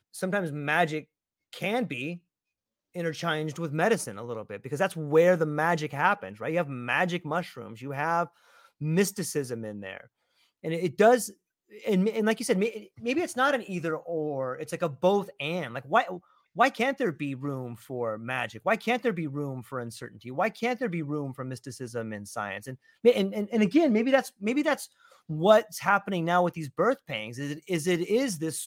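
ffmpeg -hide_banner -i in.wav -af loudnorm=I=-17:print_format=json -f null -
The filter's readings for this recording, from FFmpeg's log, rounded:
"input_i" : "-28.0",
"input_tp" : "-6.6",
"input_lra" : "5.6",
"input_thresh" : "-38.4",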